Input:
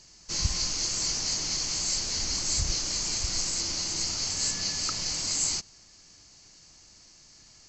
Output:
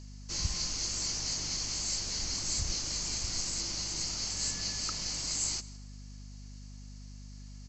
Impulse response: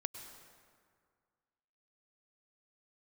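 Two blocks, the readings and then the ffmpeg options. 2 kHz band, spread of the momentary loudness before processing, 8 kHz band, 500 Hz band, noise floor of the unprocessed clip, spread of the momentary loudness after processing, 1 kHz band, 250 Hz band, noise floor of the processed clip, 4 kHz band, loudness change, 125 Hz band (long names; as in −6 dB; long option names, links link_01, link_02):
−5.0 dB, 2 LU, −5.0 dB, −5.0 dB, −55 dBFS, 18 LU, −5.0 dB, −3.0 dB, −47 dBFS, −5.0 dB, −5.0 dB, −2.5 dB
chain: -filter_complex "[0:a]aecho=1:1:161:0.0891,asplit=2[link_01][link_02];[1:a]atrim=start_sample=2205[link_03];[link_02][link_03]afir=irnorm=-1:irlink=0,volume=-13dB[link_04];[link_01][link_04]amix=inputs=2:normalize=0,aeval=exprs='val(0)+0.0112*(sin(2*PI*50*n/s)+sin(2*PI*2*50*n/s)/2+sin(2*PI*3*50*n/s)/3+sin(2*PI*4*50*n/s)/4+sin(2*PI*5*50*n/s)/5)':channel_layout=same,volume=-6.5dB"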